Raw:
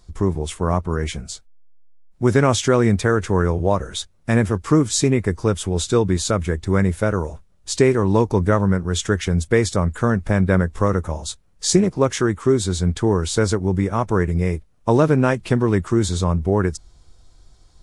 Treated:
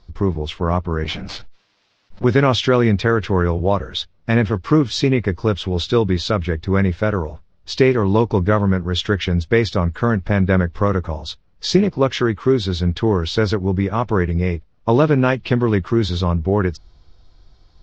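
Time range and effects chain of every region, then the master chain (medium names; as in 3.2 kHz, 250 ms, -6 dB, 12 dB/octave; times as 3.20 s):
1.04–2.24 s: comb filter that takes the minimum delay 10 ms + level flattener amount 70%
whole clip: steep low-pass 5.2 kHz 36 dB/octave; dynamic bell 3 kHz, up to +6 dB, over -42 dBFS, Q 1.7; trim +1 dB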